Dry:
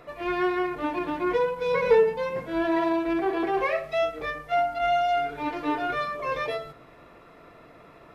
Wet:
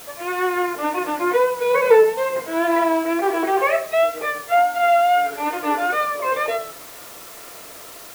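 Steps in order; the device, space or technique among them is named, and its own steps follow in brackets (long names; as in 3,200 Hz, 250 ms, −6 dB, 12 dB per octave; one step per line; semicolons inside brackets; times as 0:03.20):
dictaphone (band-pass filter 390–3,000 Hz; automatic gain control gain up to 4 dB; tape wow and flutter 29 cents; white noise bed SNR 20 dB)
level +4 dB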